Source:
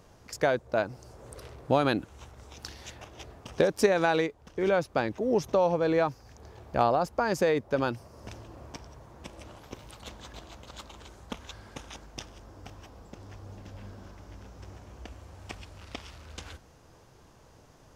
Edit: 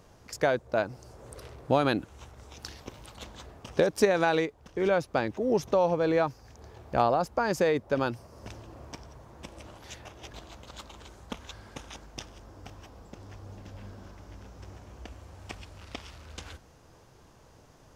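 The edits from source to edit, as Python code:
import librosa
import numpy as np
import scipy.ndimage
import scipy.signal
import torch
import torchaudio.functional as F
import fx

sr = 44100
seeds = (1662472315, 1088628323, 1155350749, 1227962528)

y = fx.edit(x, sr, fx.swap(start_s=2.8, length_s=0.47, other_s=9.65, other_length_s=0.66), tone=tone)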